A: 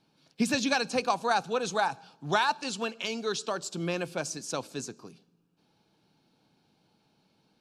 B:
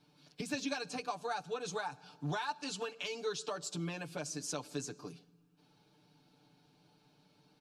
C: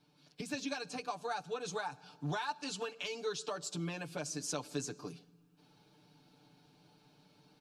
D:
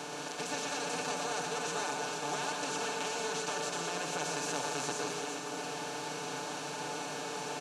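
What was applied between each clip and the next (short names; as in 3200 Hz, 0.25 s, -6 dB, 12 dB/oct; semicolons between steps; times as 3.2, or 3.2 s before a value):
compressor 4:1, threshold -38 dBFS, peak gain reduction 14.5 dB; comb 6.8 ms, depth 99%; gain -2 dB
vocal rider 2 s
per-bin compression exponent 0.2; HPF 360 Hz 6 dB/oct; tapped delay 0.121/0.471 s -5/-6 dB; gain -6 dB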